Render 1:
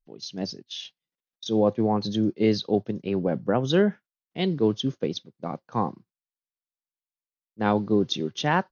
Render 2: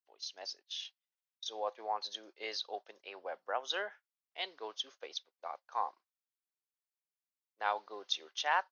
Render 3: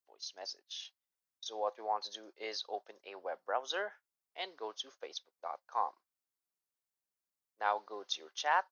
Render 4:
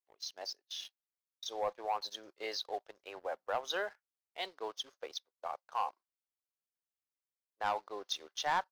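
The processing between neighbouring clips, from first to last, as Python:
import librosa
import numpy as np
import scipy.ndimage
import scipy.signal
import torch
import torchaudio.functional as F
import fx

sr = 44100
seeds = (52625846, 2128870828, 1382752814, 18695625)

y1 = scipy.signal.sosfilt(scipy.signal.butter(4, 700.0, 'highpass', fs=sr, output='sos'), x)
y1 = F.gain(torch.from_numpy(y1), -5.5).numpy()
y2 = fx.peak_eq(y1, sr, hz=2900.0, db=-6.0, octaves=1.4)
y2 = F.gain(torch.from_numpy(y2), 2.0).numpy()
y3 = fx.leveller(y2, sr, passes=2)
y3 = F.gain(torch.from_numpy(y3), -6.0).numpy()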